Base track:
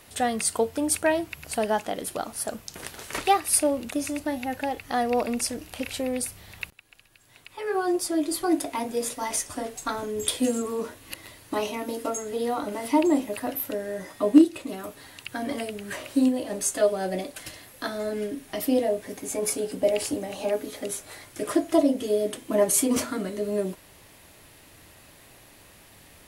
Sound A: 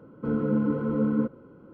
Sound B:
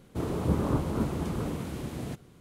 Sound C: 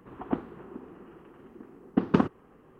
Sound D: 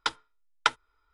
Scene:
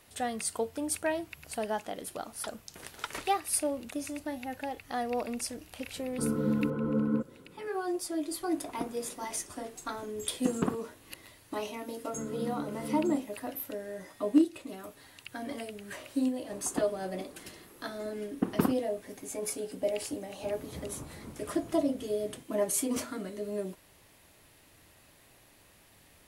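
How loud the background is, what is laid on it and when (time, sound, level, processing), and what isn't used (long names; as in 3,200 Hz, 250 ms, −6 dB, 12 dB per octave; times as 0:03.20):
base track −8 dB
0:02.38: mix in D −14.5 dB
0:05.95: mix in A −4 dB
0:08.48: mix in C −8 dB
0:11.90: mix in A −12.5 dB
0:16.45: mix in C −5 dB
0:20.27: mix in B −17.5 dB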